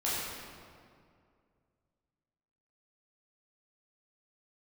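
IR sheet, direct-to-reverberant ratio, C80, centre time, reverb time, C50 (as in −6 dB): −9.0 dB, −0.5 dB, 133 ms, 2.2 s, −2.5 dB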